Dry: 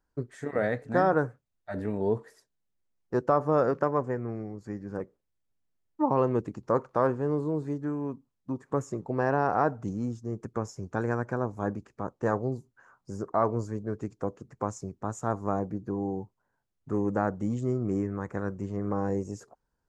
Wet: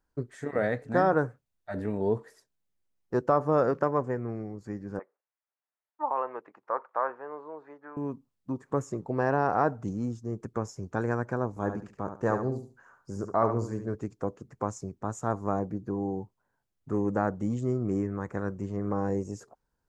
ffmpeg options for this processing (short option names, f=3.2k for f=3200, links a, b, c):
-filter_complex "[0:a]asettb=1/sr,asplit=3[a][b][c];[a]atrim=end=4.994[d];[b]atrim=start=4.99:end=7.97,asetpts=PTS-STARTPTS,afade=t=in:d=0.004:c=qsin,afade=t=out:st=2.976:d=0.004:c=qsin,asuperpass=centerf=1200:order=4:qfactor=0.82[e];[c]atrim=start=7.966[f];[d][e]acrossfade=d=0.004:c1=hsin:c2=qsin[g];[g][f]acrossfade=d=0.004:c1=qsin:c2=hsin,asettb=1/sr,asplit=3[h][i][j];[h]atrim=end=11.494[k];[i]atrim=start=11.49:end=13.95,asetpts=PTS-STARTPTS,afade=t=in:d=0.004:c=qsin,afade=t=out:st=2.456:d=0.004:c=qsin,aecho=1:1:71|142|213:0.398|0.0955|0.0229,atrim=end_sample=108486[l];[j]atrim=start=13.946[m];[k][l]acrossfade=d=0.004:c1=hsin:c2=qsin[n];[n][m]acrossfade=d=0.004:c1=qsin:c2=hsin"